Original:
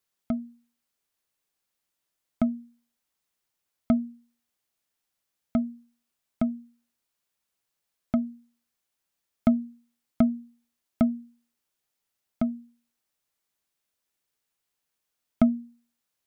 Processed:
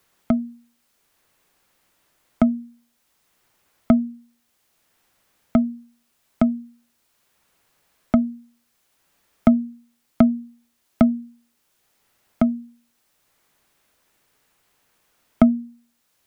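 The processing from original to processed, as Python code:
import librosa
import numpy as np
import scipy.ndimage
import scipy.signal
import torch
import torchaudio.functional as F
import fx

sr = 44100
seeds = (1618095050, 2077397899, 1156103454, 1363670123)

y = fx.band_squash(x, sr, depth_pct=40)
y = F.gain(torch.from_numpy(y), 9.0).numpy()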